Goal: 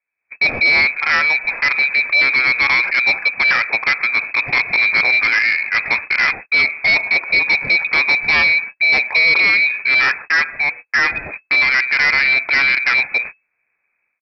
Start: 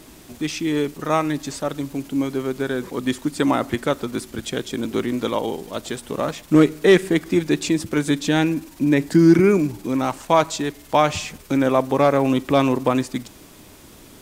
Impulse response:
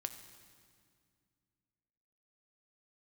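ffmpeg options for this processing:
-af "agate=range=-44dB:threshold=-35dB:ratio=16:detection=peak,equalizer=frequency=890:width=5.7:gain=4.5,lowpass=frequency=2200:width_type=q:width=0.5098,lowpass=frequency=2200:width_type=q:width=0.6013,lowpass=frequency=2200:width_type=q:width=0.9,lowpass=frequency=2200:width_type=q:width=2.563,afreqshift=-2600,dynaudnorm=framelen=160:gausssize=3:maxgain=15dB,aresample=11025,asoftclip=type=tanh:threshold=-17dB,aresample=44100,volume=6dB"

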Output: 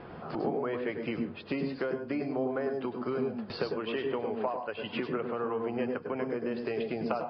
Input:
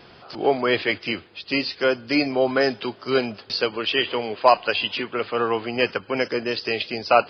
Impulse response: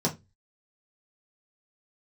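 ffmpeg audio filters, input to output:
-filter_complex "[0:a]lowpass=1400,acompressor=threshold=-34dB:ratio=12,asplit=2[link_01][link_02];[1:a]atrim=start_sample=2205,highshelf=frequency=4100:gain=9.5,adelay=98[link_03];[link_02][link_03]afir=irnorm=-1:irlink=0,volume=-16.5dB[link_04];[link_01][link_04]amix=inputs=2:normalize=0,volume=3.5dB"

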